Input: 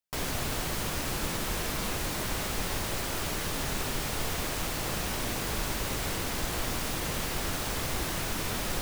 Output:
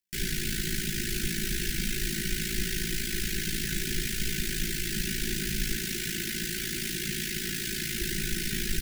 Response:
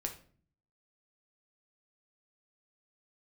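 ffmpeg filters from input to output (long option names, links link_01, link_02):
-filter_complex "[0:a]asettb=1/sr,asplit=3[link_01][link_02][link_03];[link_01]atrim=end=5.764[link_04];[link_02]atrim=start=5.76:end=8.01,asetpts=PTS-STARTPTS,afade=type=in:duration=0.004:curve=qsin,afade=type=out:start_time=2.246:duration=0.004:curve=qsin,highpass=frequency=130:poles=1[link_05];[link_03]atrim=start=8.006[link_06];[link_04][link_05]acrossfade=duration=0.004:curve1=hsin:curve2=qsin[link_07];[link_07][link_06]acrossfade=duration=0.004:curve1=qsin:curve2=hsin,tremolo=f=55:d=0.889,asuperstop=centerf=760:order=20:qfactor=0.69,aecho=1:1:5.3:0.65,volume=4.5dB"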